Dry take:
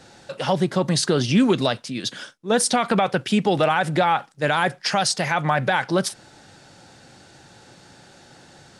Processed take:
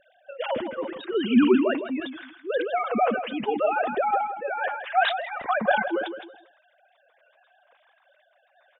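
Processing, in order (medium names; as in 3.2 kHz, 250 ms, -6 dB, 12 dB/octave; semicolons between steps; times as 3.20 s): formants replaced by sine waves; flange 0.75 Hz, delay 0.3 ms, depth 9.3 ms, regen +2%; random-step tremolo 3.5 Hz, depth 55%; on a send: feedback delay 163 ms, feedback 22%, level -10 dB; on the sum: decay stretcher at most 69 dB/s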